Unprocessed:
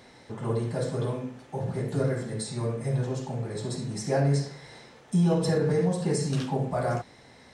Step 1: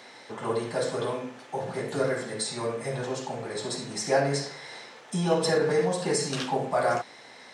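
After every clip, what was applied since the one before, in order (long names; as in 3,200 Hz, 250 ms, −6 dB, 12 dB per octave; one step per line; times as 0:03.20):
meter weighting curve A
level +6 dB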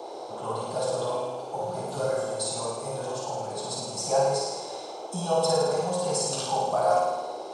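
phaser with its sweep stopped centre 770 Hz, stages 4
flutter between parallel walls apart 9.3 metres, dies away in 1.2 s
noise in a band 330–860 Hz −39 dBFS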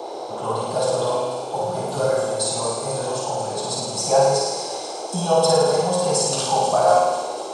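delay with a high-pass on its return 246 ms, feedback 70%, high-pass 2,000 Hz, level −9.5 dB
level +7 dB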